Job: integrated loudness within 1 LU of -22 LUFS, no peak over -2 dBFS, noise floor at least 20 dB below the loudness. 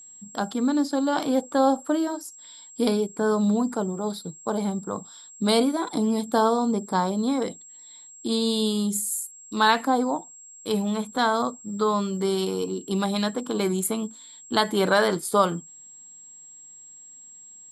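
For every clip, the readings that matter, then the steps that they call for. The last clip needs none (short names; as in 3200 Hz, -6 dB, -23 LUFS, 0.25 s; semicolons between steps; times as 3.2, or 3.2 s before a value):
steady tone 7600 Hz; tone level -44 dBFS; loudness -25.0 LUFS; peak -6.5 dBFS; loudness target -22.0 LUFS
-> notch 7600 Hz, Q 30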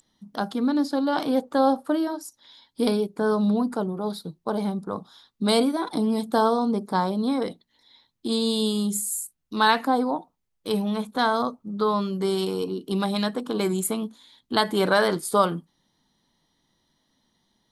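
steady tone none; loudness -25.0 LUFS; peak -6.0 dBFS; loudness target -22.0 LUFS
-> gain +3 dB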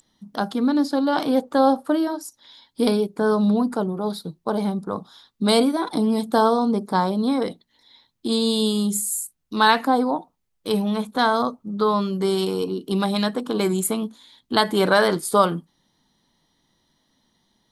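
loudness -22.0 LUFS; peak -3.0 dBFS; noise floor -72 dBFS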